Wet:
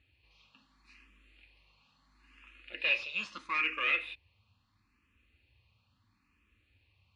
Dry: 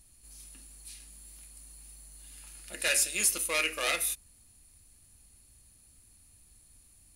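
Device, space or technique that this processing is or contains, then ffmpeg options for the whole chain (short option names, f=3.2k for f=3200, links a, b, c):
barber-pole phaser into a guitar amplifier: -filter_complex "[0:a]asplit=2[a][b];[b]afreqshift=0.75[c];[a][c]amix=inputs=2:normalize=1,asoftclip=type=tanh:threshold=-26.5dB,highpass=84,equalizer=f=100:t=q:w=4:g=5,equalizer=f=150:t=q:w=4:g=-10,equalizer=f=400:t=q:w=4:g=-5,equalizer=f=680:t=q:w=4:g=-10,equalizer=f=1.1k:t=q:w=4:g=8,equalizer=f=2.6k:t=q:w=4:g=9,lowpass=f=3.5k:w=0.5412,lowpass=f=3.5k:w=1.3066"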